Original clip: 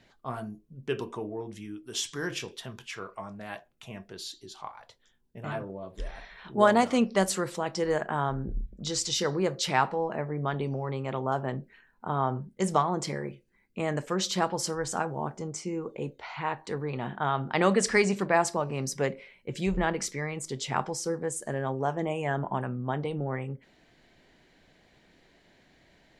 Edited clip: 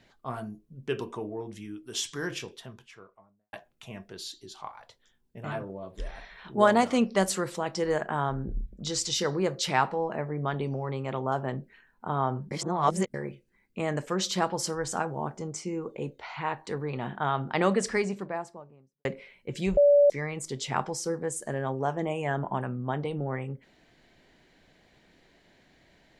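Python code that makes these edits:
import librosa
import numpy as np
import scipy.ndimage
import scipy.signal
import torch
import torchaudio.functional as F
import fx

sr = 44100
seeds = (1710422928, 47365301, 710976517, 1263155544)

y = fx.studio_fade_out(x, sr, start_s=2.17, length_s=1.36)
y = fx.studio_fade_out(y, sr, start_s=17.32, length_s=1.73)
y = fx.edit(y, sr, fx.reverse_span(start_s=12.51, length_s=0.63),
    fx.bleep(start_s=19.77, length_s=0.33, hz=576.0, db=-15.0), tone=tone)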